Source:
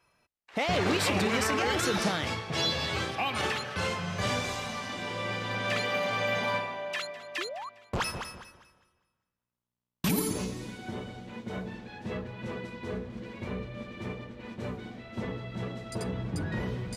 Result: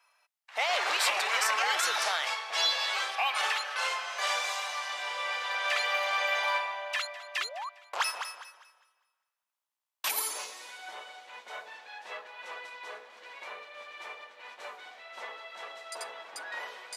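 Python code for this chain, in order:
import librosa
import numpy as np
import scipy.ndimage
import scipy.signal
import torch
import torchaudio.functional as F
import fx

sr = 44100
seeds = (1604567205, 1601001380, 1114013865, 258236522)

y = scipy.signal.sosfilt(scipy.signal.butter(4, 710.0, 'highpass', fs=sr, output='sos'), x)
y = F.gain(torch.from_numpy(y), 2.5).numpy()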